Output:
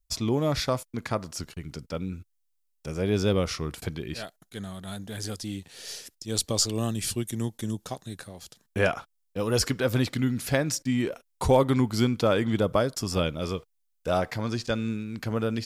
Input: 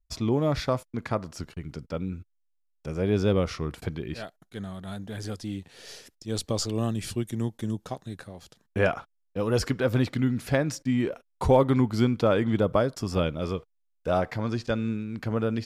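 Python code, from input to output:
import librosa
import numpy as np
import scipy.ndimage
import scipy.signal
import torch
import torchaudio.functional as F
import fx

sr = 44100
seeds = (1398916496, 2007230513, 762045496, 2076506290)

y = fx.high_shelf(x, sr, hz=3700.0, db=11.5)
y = y * librosa.db_to_amplitude(-1.0)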